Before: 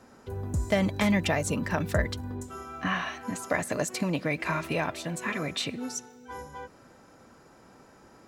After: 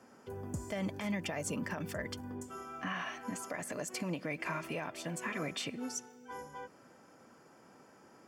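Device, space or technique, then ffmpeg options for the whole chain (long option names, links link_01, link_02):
PA system with an anti-feedback notch: -af "highpass=140,asuperstop=centerf=3900:order=4:qfactor=7.4,alimiter=limit=-22.5dB:level=0:latency=1:release=121,volume=-4.5dB"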